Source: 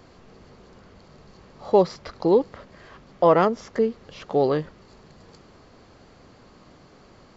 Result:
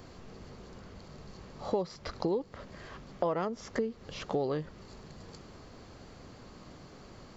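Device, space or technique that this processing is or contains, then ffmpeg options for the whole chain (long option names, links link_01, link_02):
ASMR close-microphone chain: -af "lowshelf=frequency=220:gain=4.5,acompressor=threshold=-28dB:ratio=5,highshelf=frequency=6100:gain=7,volume=-1.5dB"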